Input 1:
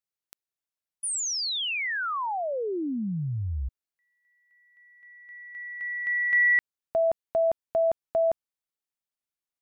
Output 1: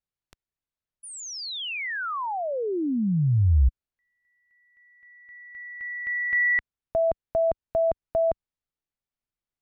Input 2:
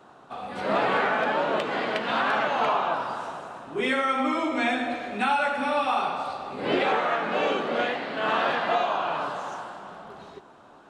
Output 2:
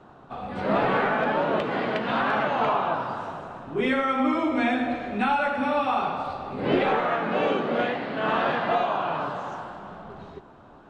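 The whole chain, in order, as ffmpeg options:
-af "aemphasis=mode=reproduction:type=bsi"

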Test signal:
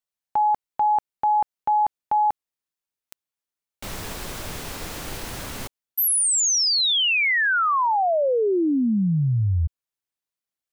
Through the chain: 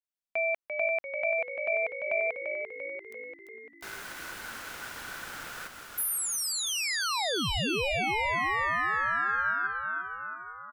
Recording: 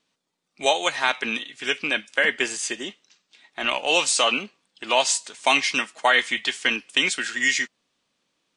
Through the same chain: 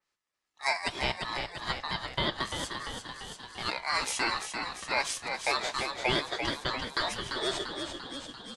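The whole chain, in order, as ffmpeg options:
-filter_complex "[0:a]aeval=exprs='val(0)*sin(2*PI*1500*n/s)':c=same,asplit=9[s0][s1][s2][s3][s4][s5][s6][s7][s8];[s1]adelay=343,afreqshift=-53,volume=0.501[s9];[s2]adelay=686,afreqshift=-106,volume=0.302[s10];[s3]adelay=1029,afreqshift=-159,volume=0.18[s11];[s4]adelay=1372,afreqshift=-212,volume=0.108[s12];[s5]adelay=1715,afreqshift=-265,volume=0.0653[s13];[s6]adelay=2058,afreqshift=-318,volume=0.0389[s14];[s7]adelay=2401,afreqshift=-371,volume=0.0234[s15];[s8]adelay=2744,afreqshift=-424,volume=0.014[s16];[s0][s9][s10][s11][s12][s13][s14][s15][s16]amix=inputs=9:normalize=0,adynamicequalizer=threshold=0.0141:dfrequency=3300:dqfactor=0.7:tfrequency=3300:tqfactor=0.7:attack=5:release=100:ratio=0.375:range=2.5:mode=cutabove:tftype=highshelf,volume=0.501"

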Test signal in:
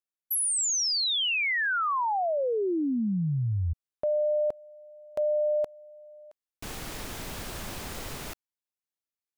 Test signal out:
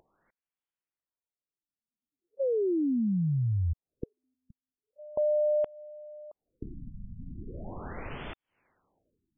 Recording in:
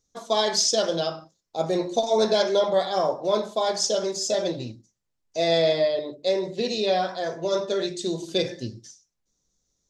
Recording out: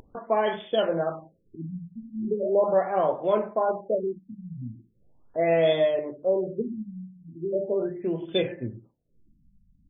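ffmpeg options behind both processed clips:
-af "acompressor=mode=upward:threshold=0.00794:ratio=2.5:attack=53:release=149:knee=2.83:detection=peak,afftfilt=real='re*lt(b*sr/1024,240*pow(3600/240,0.5+0.5*sin(2*PI*0.39*pts/sr)))':imag='im*lt(b*sr/1024,240*pow(3600/240,0.5+0.5*sin(2*PI*0.39*pts/sr)))':win_size=1024:overlap=0.75"

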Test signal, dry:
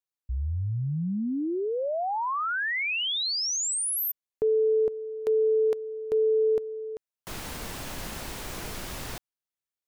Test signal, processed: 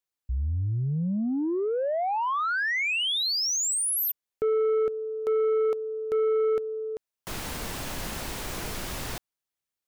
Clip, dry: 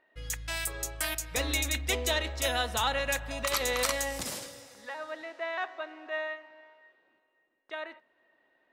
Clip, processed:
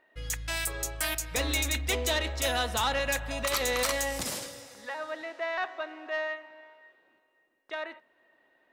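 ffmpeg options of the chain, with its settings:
-af "asoftclip=type=tanh:threshold=0.0631,volume=1.41"

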